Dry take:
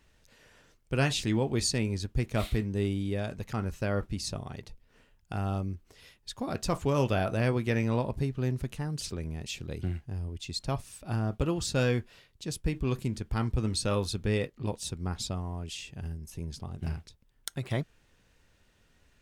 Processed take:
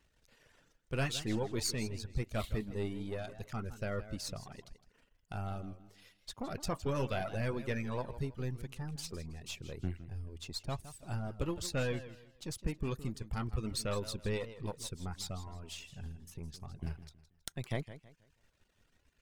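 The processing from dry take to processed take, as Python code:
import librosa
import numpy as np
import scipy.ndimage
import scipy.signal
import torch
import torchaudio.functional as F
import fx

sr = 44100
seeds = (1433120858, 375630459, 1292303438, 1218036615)

y = np.where(x < 0.0, 10.0 ** (-7.0 / 20.0) * x, x)
y = fx.dereverb_blind(y, sr, rt60_s=0.78)
y = fx.echo_warbled(y, sr, ms=161, feedback_pct=31, rate_hz=2.8, cents=135, wet_db=-14.0)
y = y * librosa.db_to_amplitude(-3.0)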